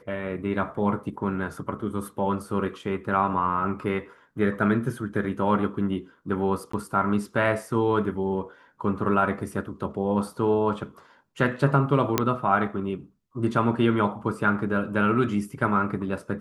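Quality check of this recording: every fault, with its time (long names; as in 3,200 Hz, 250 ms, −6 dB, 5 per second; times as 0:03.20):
0:06.72–0:06.73: drop-out 14 ms
0:12.18: click −5 dBFS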